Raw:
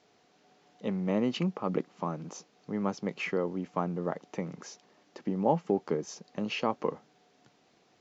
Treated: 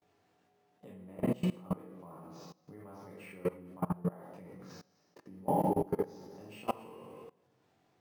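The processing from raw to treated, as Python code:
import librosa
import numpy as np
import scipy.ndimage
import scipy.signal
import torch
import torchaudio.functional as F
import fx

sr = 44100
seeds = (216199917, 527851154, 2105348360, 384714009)

y = fx.reverse_delay_fb(x, sr, ms=141, feedback_pct=68, wet_db=-8.5, at=(4.69, 6.87))
y = fx.peak_eq(y, sr, hz=98.0, db=10.0, octaves=0.57)
y = fx.doubler(y, sr, ms=22.0, db=-5.5)
y = np.repeat(y[::4], 4)[:len(y)]
y = fx.high_shelf(y, sr, hz=2700.0, db=-9.0)
y = fx.rev_plate(y, sr, seeds[0], rt60_s=0.99, hf_ratio=0.95, predelay_ms=0, drr_db=-6.0)
y = fx.level_steps(y, sr, step_db=22)
y = F.gain(torch.from_numpy(y), -6.0).numpy()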